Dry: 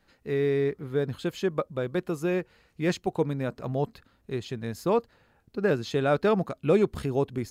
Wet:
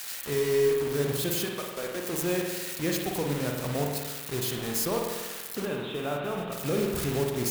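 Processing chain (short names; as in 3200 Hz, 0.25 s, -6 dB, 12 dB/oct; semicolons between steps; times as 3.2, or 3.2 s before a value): switching spikes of -22 dBFS; 1.44–2.11 HPF 850 Hz -> 240 Hz 12 dB/oct; limiter -19 dBFS, peak gain reduction 7.5 dB; bit-crush 6-bit; 5.65–6.52 rippled Chebyshev low-pass 3800 Hz, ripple 6 dB; modulation noise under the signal 17 dB; spring tank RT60 1.3 s, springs 48 ms, chirp 20 ms, DRR 0.5 dB; gain -2.5 dB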